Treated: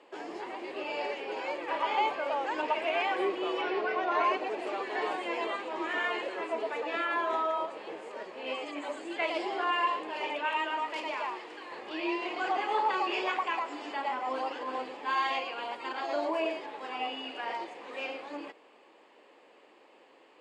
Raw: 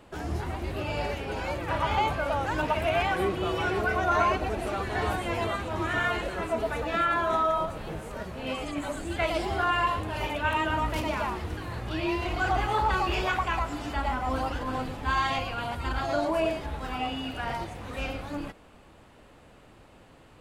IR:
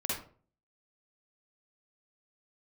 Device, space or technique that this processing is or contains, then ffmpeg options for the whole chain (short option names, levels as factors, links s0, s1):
phone speaker on a table: -filter_complex "[0:a]highpass=f=350:w=0.5412,highpass=f=350:w=1.3066,equalizer=f=670:t=q:w=4:g=-5,equalizer=f=1400:t=q:w=4:g=-9,equalizer=f=3800:t=q:w=4:g=-6,equalizer=f=5900:t=q:w=4:g=-10,lowpass=f=6500:w=0.5412,lowpass=f=6500:w=1.3066,asettb=1/sr,asplit=3[s0][s1][s2];[s0]atrim=end=3.614[s3];[s1]atrim=start=3.61:end=4.24,asetpts=PTS-STARTPTS,afade=t=in:d=0.004:c=qsin,afade=t=out:st=0.626:d=0.004:c=qsin,lowpass=f=5500:w=0.5412,lowpass=f=5500:w=1.3066[s4];[s2]atrim=start=4.236[s5];[s3][s4]acrossfade=d=0.004:c1=hsin:c2=qsin[s6];[s6][s5]acrossfade=d=0.004:c1=qsin:c2=hsin,asettb=1/sr,asplit=3[s7][s8][s9];[s7]atrim=end=10.454[s10];[s8]atrim=start=10.45:end=11.72,asetpts=PTS-STARTPTS,afade=t=in:d=0.004:c=qsin,afade=t=out:st=1.266:d=0.004:c=qsin,lowshelf=f=380:g=-9[s11];[s9]atrim=start=11.716[s12];[s10][s11]acrossfade=d=0.004:c1=hsin:c2=qsin[s13];[s13][s12]acrossfade=d=0.004:c1=qsin:c2=hsin"